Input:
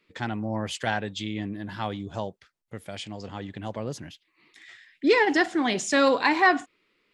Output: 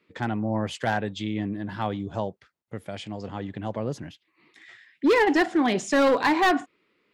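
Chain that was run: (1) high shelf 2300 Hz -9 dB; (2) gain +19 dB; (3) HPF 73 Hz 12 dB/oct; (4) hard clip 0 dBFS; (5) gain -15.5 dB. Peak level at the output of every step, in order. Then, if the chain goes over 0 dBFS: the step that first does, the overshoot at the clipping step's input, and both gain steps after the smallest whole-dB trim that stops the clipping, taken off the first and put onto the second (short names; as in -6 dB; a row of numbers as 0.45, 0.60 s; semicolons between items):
-10.0, +9.0, +9.0, 0.0, -15.5 dBFS; step 2, 9.0 dB; step 2 +10 dB, step 5 -6.5 dB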